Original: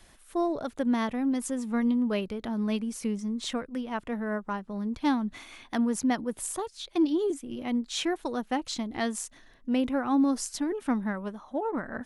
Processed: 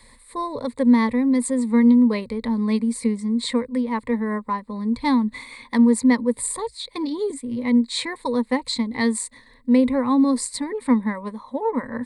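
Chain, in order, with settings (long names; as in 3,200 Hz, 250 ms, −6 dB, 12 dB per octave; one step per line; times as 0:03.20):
EQ curve with evenly spaced ripples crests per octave 0.97, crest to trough 17 dB
level +3 dB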